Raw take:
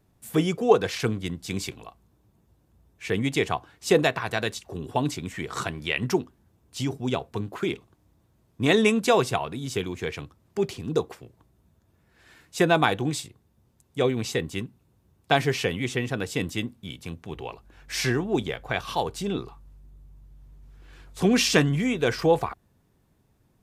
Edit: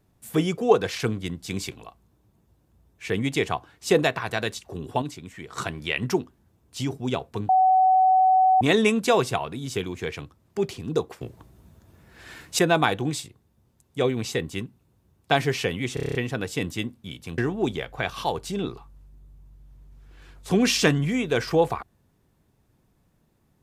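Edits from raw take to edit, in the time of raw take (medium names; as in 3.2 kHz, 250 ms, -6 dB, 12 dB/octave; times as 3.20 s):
5.02–5.58 s: gain -7 dB
7.49–8.61 s: bleep 752 Hz -14.5 dBFS
11.21–12.59 s: gain +10.5 dB
15.94 s: stutter 0.03 s, 8 plays
17.17–18.09 s: delete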